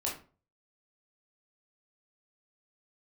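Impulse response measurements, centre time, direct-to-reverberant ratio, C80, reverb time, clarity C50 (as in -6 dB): 29 ms, -4.0 dB, 13.0 dB, 0.35 s, 7.0 dB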